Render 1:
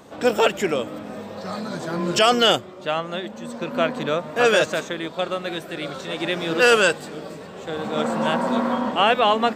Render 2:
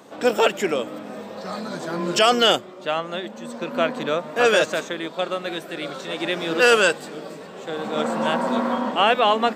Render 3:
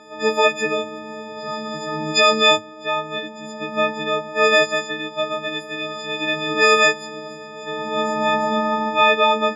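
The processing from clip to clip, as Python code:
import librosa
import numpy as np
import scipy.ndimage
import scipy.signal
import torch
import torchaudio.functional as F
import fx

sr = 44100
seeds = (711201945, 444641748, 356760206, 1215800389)

y1 = scipy.signal.sosfilt(scipy.signal.butter(2, 180.0, 'highpass', fs=sr, output='sos'), x)
y2 = fx.freq_snap(y1, sr, grid_st=6)
y2 = fx.air_absorb(y2, sr, metres=130.0)
y2 = F.gain(torch.from_numpy(y2), -1.0).numpy()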